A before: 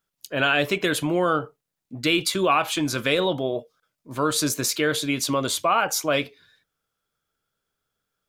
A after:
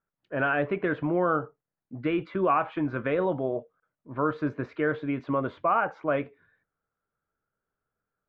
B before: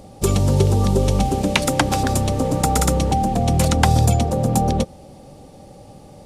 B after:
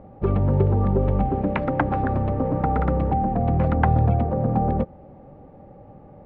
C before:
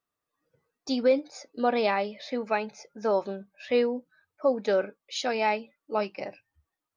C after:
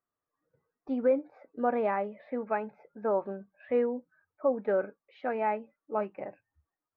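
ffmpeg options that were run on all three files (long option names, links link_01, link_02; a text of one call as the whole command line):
ffmpeg -i in.wav -af "lowpass=frequency=1800:width=0.5412,lowpass=frequency=1800:width=1.3066,volume=-3dB" out.wav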